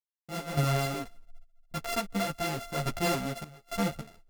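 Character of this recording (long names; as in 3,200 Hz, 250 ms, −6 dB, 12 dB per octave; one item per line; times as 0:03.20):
a buzz of ramps at a fixed pitch in blocks of 64 samples
sample-and-hold tremolo 3.5 Hz, depth 100%
a shimmering, thickened sound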